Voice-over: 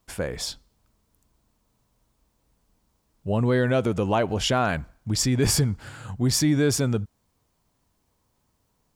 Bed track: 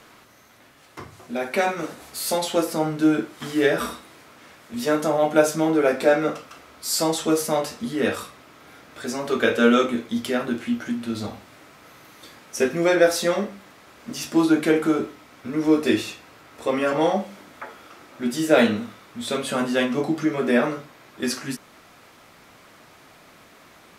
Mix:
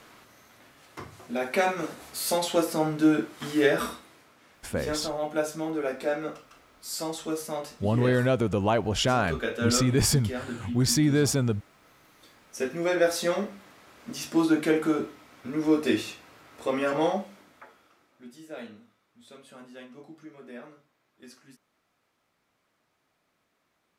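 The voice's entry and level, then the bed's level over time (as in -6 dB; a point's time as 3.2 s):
4.55 s, -1.5 dB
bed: 3.79 s -2.5 dB
4.35 s -10.5 dB
12.35 s -10.5 dB
13.29 s -4.5 dB
17.05 s -4.5 dB
18.43 s -24 dB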